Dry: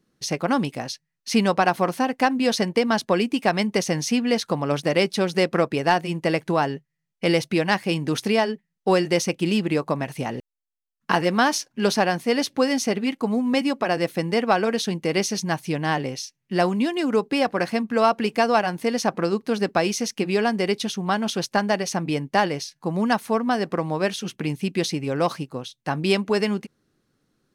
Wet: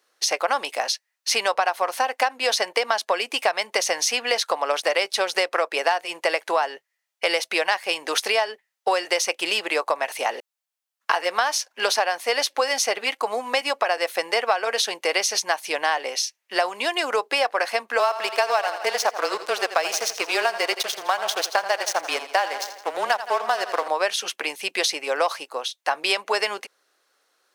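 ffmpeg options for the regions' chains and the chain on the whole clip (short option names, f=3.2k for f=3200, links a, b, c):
-filter_complex "[0:a]asettb=1/sr,asplit=3[a][b][c];[a]atrim=end=17.994[d];[b]atrim=start=17.99:end=23.88,asetpts=PTS-STARTPTS,afade=t=in:d=0.004:c=qsin,afade=t=out:st=5.886:d=0.004:c=qsin,aeval=exprs='sgn(val(0))*max(abs(val(0))-0.0224,0)':c=same,afreqshift=-21,aecho=1:1:83|166|249|332|415:0.211|0.108|0.055|0.028|0.0143,atrim=end_sample=259749[e];[c]atrim=start=23.876[f];[d][e]acrossfade=d=0.004:c1=hsin:c2=qsin[g];[g][f]acrossfade=d=0.004:c1=qsin:c2=hsin,highpass=f=570:w=0.5412,highpass=f=570:w=1.3066,acompressor=threshold=-27dB:ratio=6,volume=9dB"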